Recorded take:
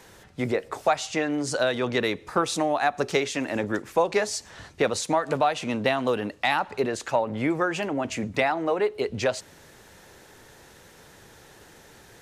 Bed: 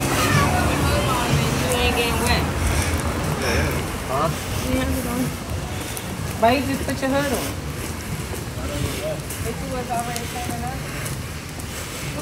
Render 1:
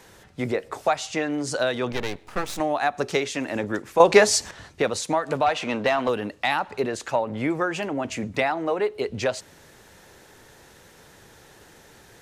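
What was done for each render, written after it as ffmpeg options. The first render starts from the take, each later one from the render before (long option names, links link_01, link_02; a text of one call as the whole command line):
ffmpeg -i in.wav -filter_complex "[0:a]asettb=1/sr,asplit=3[link_01][link_02][link_03];[link_01]atrim=end=1.924[link_04];[link_02]atrim=start=1.92:end=2.6,asetpts=PTS-STARTPTS,afade=type=in:duration=0.004:curve=qsin,afade=type=out:start_time=0.676:duration=0.004:curve=qsin,aeval=exprs='max(val(0),0)':channel_layout=same[link_05];[link_03]atrim=start=2.596[link_06];[link_04][link_05]acrossfade=duration=0.004:curve1=hsin:curve2=qsin[link_07];[link_07][link_06]acrossfade=duration=0.004:curve1=qsin:curve2=hsin,asettb=1/sr,asplit=3[link_08][link_09][link_10];[link_08]atrim=end=5.464[link_11];[link_09]atrim=start=5.46:end=6.09,asetpts=PTS-STARTPTS,afade=type=in:duration=0.004:curve=qsin,afade=type=out:start_time=0.626:duration=0.004:curve=qsin,asplit=2[link_12][link_13];[link_13]highpass=frequency=720:poles=1,volume=13dB,asoftclip=type=tanh:threshold=-11.5dB[link_14];[link_12][link_14]amix=inputs=2:normalize=0,lowpass=frequency=2500:poles=1,volume=-6dB[link_15];[link_10]atrim=start=6.086[link_16];[link_11][link_15]acrossfade=duration=0.004:curve1=hsin:curve2=qsin[link_17];[link_17][link_16]acrossfade=duration=0.004:curve1=qsin:curve2=hsin,asplit=3[link_18][link_19][link_20];[link_18]atrim=end=4.002[link_21];[link_19]atrim=start=3.998:end=4.512,asetpts=PTS-STARTPTS,volume=9.5dB[link_22];[link_20]atrim=start=4.508[link_23];[link_21][link_22]acrossfade=duration=0.004:curve1=hsin:curve2=hsin[link_24];[link_24][link_23]acrossfade=duration=0.004:curve1=hsin:curve2=hsin" out.wav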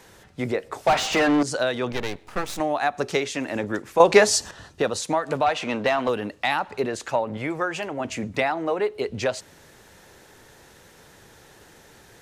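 ffmpeg -i in.wav -filter_complex "[0:a]asettb=1/sr,asplit=3[link_01][link_02][link_03];[link_01]atrim=end=0.874[link_04];[link_02]atrim=start=0.87:end=1.43,asetpts=PTS-STARTPTS,afade=type=in:duration=0.004:curve=qsin,afade=type=out:start_time=0.556:duration=0.004:curve=qsin,asplit=2[link_05][link_06];[link_06]highpass=frequency=720:poles=1,volume=28dB,asoftclip=type=tanh:threshold=-11dB[link_07];[link_05][link_07]amix=inputs=2:normalize=0,lowpass=frequency=1800:poles=1,volume=-6dB[link_08];[link_03]atrim=start=1.426[link_09];[link_04][link_08]acrossfade=duration=0.004:curve1=hsin:curve2=qsin[link_10];[link_10][link_09]acrossfade=duration=0.004:curve1=qsin:curve2=hsin,asettb=1/sr,asplit=3[link_11][link_12][link_13];[link_11]atrim=end=4.304[link_14];[link_12]atrim=start=4.3:end=5.02,asetpts=PTS-STARTPTS,afade=type=in:duration=0.004:curve=qsin,afade=type=out:start_time=0.716:duration=0.004:curve=qsin,bandreject=frequency=2200:width=5[link_15];[link_13]atrim=start=5.016[link_16];[link_14][link_15]acrossfade=duration=0.004:curve1=hsin:curve2=qsin[link_17];[link_17][link_16]acrossfade=duration=0.004:curve1=qsin:curve2=hsin,asettb=1/sr,asplit=3[link_18][link_19][link_20];[link_18]atrim=end=7.374[link_21];[link_19]atrim=start=7.37:end=8,asetpts=PTS-STARTPTS,afade=type=in:duration=0.004:curve=qsin,afade=type=out:start_time=0.626:duration=0.004:curve=qsin,equalizer=frequency=240:width=1.5:gain=-8[link_22];[link_20]atrim=start=7.996[link_23];[link_21][link_22]acrossfade=duration=0.004:curve1=hsin:curve2=qsin[link_24];[link_24][link_23]acrossfade=duration=0.004:curve1=qsin:curve2=hsin" out.wav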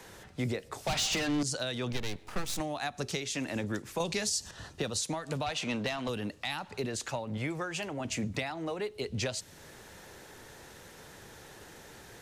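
ffmpeg -i in.wav -filter_complex "[0:a]acrossover=split=200|3000[link_01][link_02][link_03];[link_02]acompressor=threshold=-41dB:ratio=2.5[link_04];[link_01][link_04][link_03]amix=inputs=3:normalize=0,alimiter=limit=-21dB:level=0:latency=1:release=234" out.wav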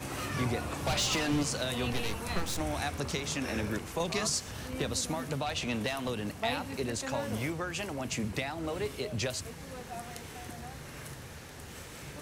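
ffmpeg -i in.wav -i bed.wav -filter_complex "[1:a]volume=-17.5dB[link_01];[0:a][link_01]amix=inputs=2:normalize=0" out.wav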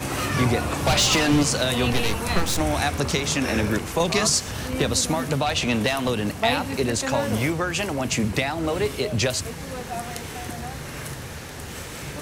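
ffmpeg -i in.wav -af "volume=10.5dB" out.wav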